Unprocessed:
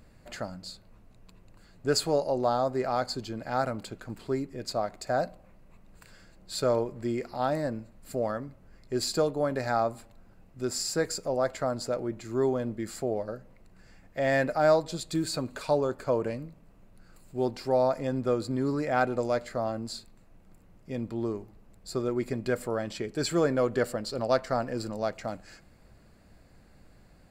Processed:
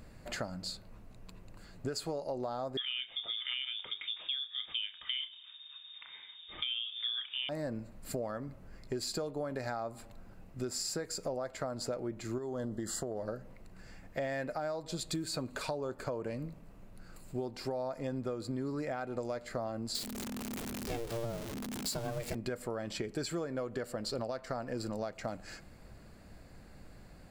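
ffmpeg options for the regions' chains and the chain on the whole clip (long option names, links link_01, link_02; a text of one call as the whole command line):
ffmpeg -i in.wav -filter_complex "[0:a]asettb=1/sr,asplit=3[link_01][link_02][link_03];[link_01]atrim=end=2.774[link_04];[link_02]atrim=start=2.77:end=7.49,asetpts=PTS-STARTPTS,afade=type=in:duration=0.004:curve=qsin,afade=type=out:start_time=4.716:duration=0.004:curve=qsin,lowpass=frequency=3100:width_type=q:width=0.5098,lowpass=frequency=3100:width_type=q:width=0.6013,lowpass=frequency=3100:width_type=q:width=0.9,lowpass=frequency=3100:width_type=q:width=2.563,afreqshift=-3700,bandreject=frequency=50:width_type=h:width=6,bandreject=frequency=100:width_type=h:width=6,bandreject=frequency=150:width_type=h:width=6,bandreject=frequency=200:width_type=h:width=6,bandreject=frequency=250:width_type=h:width=6,bandreject=frequency=300:width_type=h:width=6,bandreject=frequency=350:width_type=h:width=6,bandreject=frequency=400:width_type=h:width=6,bandreject=frequency=450:width_type=h:width=6,asplit=2[link_05][link_06];[link_06]adelay=30,volume=-11dB[link_07];[link_05][link_07]amix=inputs=2:normalize=0,atrim=end_sample=208152[link_08];[link_03]atrim=start=7.486[link_09];[link_04][link_08]acrossfade=duration=0.004:curve1=hsin:curve2=qsin[link_10];[link_10][link_09]acrossfade=duration=0.004:curve1=qsin:curve2=hsin,asettb=1/sr,asplit=3[link_11][link_12][link_13];[link_11]atrim=end=12.384[link_14];[link_12]atrim=start=12.38:end=13.23,asetpts=PTS-STARTPTS,afade=type=in:duration=0.004:curve=qsin,afade=type=out:start_time=0.846:duration=0.004:curve=qsin,asuperstop=centerf=2400:order=20:qfactor=3.2,equalizer=frequency=7300:width=1.5:gain=5,acompressor=threshold=-31dB:ratio=5:attack=3.2:release=140:knee=1:detection=peak[link_15];[link_13]atrim=start=13.226[link_16];[link_14][link_15]acrossfade=duration=0.004:curve1=hsin:curve2=qsin[link_17];[link_17][link_16]acrossfade=duration=0.004:curve1=qsin:curve2=hsin,asettb=1/sr,asplit=3[link_18][link_19][link_20];[link_18]atrim=end=19.954[link_21];[link_19]atrim=start=19.95:end=22.35,asetpts=PTS-STARTPTS,afade=type=in:duration=0.004:curve=qsin,afade=type=out:start_time=2.396:duration=0.004:curve=qsin,aeval=exprs='val(0)+0.5*0.015*sgn(val(0))':channel_layout=same,aeval=exprs='val(0)*sin(2*PI*230*n/s)':channel_layout=same,highshelf=frequency=2500:gain=9[link_22];[link_20]atrim=start=22.346[link_23];[link_21][link_22]acrossfade=duration=0.004:curve1=hsin:curve2=qsin[link_24];[link_24][link_23]acrossfade=duration=0.004:curve1=qsin:curve2=hsin,alimiter=limit=-20.5dB:level=0:latency=1:release=319,acompressor=threshold=-37dB:ratio=6,volume=3dB" out.wav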